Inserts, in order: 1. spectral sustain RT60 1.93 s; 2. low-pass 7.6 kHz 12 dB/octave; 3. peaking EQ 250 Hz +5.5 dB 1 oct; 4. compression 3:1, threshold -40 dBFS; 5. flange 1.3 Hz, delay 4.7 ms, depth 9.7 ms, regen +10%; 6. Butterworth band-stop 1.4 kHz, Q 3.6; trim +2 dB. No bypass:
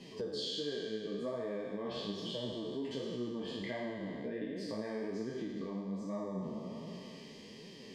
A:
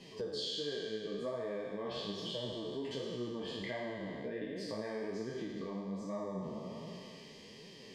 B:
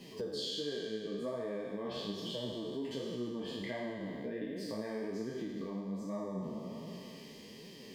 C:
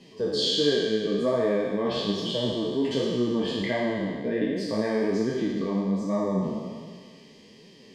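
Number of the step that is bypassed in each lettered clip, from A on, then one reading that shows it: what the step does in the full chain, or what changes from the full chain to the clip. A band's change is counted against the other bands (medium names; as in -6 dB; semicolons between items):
3, 250 Hz band -3.5 dB; 2, 8 kHz band +2.0 dB; 4, mean gain reduction 10.5 dB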